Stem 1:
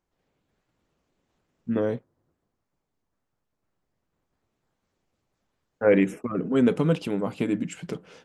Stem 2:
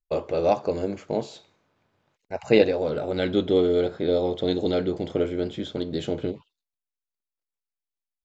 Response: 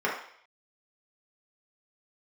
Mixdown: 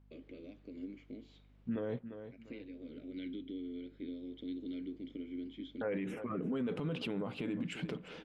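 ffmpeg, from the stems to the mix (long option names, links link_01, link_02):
-filter_complex "[0:a]highshelf=frequency=4900:width_type=q:width=1.5:gain=-9.5,alimiter=limit=-18.5dB:level=0:latency=1:release=41,volume=-1dB,asplit=3[link_01][link_02][link_03];[link_02]volume=-19dB[link_04];[1:a]acompressor=threshold=-25dB:ratio=12,asplit=3[link_05][link_06][link_07];[link_05]bandpass=frequency=270:width_type=q:width=8,volume=0dB[link_08];[link_06]bandpass=frequency=2290:width_type=q:width=8,volume=-6dB[link_09];[link_07]bandpass=frequency=3010:width_type=q:width=8,volume=-9dB[link_10];[link_08][link_09][link_10]amix=inputs=3:normalize=0,aeval=exprs='val(0)+0.00126*(sin(2*PI*50*n/s)+sin(2*PI*2*50*n/s)/2+sin(2*PI*3*50*n/s)/3+sin(2*PI*4*50*n/s)/4+sin(2*PI*5*50*n/s)/5)':channel_layout=same,volume=-4dB[link_11];[link_03]apad=whole_len=363773[link_12];[link_11][link_12]sidechaincompress=threshold=-39dB:ratio=8:attack=16:release=663[link_13];[link_04]aecho=0:1:348|696|1044|1392:1|0.31|0.0961|0.0298[link_14];[link_01][link_13][link_14]amix=inputs=3:normalize=0,alimiter=level_in=5dB:limit=-24dB:level=0:latency=1:release=143,volume=-5dB"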